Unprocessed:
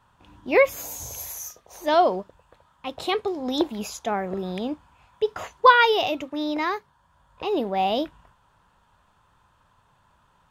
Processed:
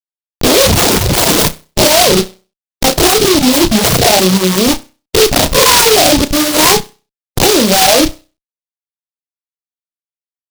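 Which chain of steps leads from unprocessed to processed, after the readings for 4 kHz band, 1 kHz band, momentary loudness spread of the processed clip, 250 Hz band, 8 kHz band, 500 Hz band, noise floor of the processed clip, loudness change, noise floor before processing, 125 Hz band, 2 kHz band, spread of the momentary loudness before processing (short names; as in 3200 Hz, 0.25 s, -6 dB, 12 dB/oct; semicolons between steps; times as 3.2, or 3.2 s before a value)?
+21.0 dB, +8.5 dB, 7 LU, +17.0 dB, +27.5 dB, +12.5 dB, under -85 dBFS, +15.0 dB, -63 dBFS, n/a, +11.0 dB, 16 LU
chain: spectral swells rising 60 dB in 0.32 s; in parallel at -12 dB: bit-crush 5-bit; on the sum: Schmitt trigger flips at -30 dBFS; low shelf 140 Hz -8 dB; on a send: flutter echo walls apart 5.5 m, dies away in 0.33 s; on the sum: reverb removal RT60 1.6 s; maximiser +17.5 dB; noise-modulated delay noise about 3900 Hz, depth 0.17 ms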